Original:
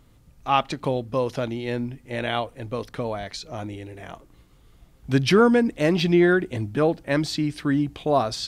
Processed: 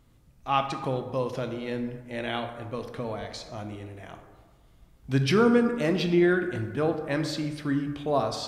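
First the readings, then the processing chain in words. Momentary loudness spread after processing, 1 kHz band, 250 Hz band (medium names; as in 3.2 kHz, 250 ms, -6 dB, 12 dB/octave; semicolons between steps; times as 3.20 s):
16 LU, -4.5 dB, -4.0 dB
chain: plate-style reverb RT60 1.4 s, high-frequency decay 0.45×, DRR 5.5 dB; trim -5.5 dB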